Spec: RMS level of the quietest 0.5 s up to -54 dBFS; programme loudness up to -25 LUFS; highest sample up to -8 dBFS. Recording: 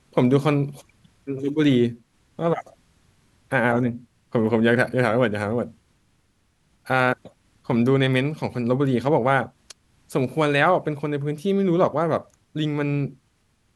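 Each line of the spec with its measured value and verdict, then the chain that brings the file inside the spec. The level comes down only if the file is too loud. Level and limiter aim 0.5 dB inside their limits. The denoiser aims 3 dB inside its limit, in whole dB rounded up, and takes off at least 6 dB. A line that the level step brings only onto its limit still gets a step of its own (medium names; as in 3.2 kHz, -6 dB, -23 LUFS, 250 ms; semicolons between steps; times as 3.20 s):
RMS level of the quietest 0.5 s -65 dBFS: pass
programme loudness -22.5 LUFS: fail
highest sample -5.0 dBFS: fail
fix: trim -3 dB; peak limiter -8.5 dBFS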